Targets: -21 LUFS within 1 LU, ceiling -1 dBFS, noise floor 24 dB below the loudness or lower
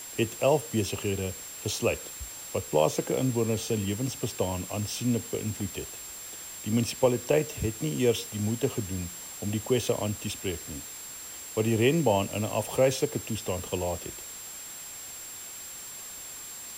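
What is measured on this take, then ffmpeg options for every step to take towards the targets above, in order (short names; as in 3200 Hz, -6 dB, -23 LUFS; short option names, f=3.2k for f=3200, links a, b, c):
steady tone 7500 Hz; tone level -41 dBFS; noise floor -42 dBFS; noise floor target -54 dBFS; loudness -30.0 LUFS; peak -11.0 dBFS; loudness target -21.0 LUFS
-> -af "bandreject=f=7.5k:w=30"
-af "afftdn=nr=12:nf=-42"
-af "volume=9dB"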